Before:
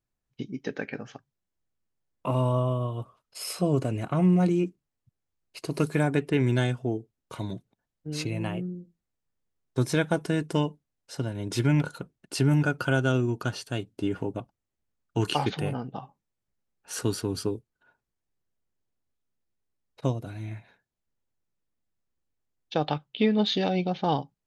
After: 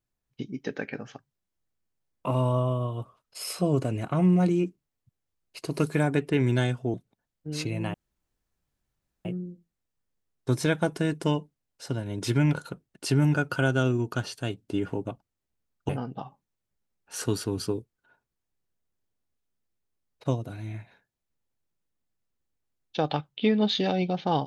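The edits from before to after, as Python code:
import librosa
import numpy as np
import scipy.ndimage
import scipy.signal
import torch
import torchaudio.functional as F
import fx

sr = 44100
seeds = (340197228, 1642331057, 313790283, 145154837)

y = fx.edit(x, sr, fx.cut(start_s=6.94, length_s=0.6),
    fx.insert_room_tone(at_s=8.54, length_s=1.31),
    fx.cut(start_s=15.18, length_s=0.48), tone=tone)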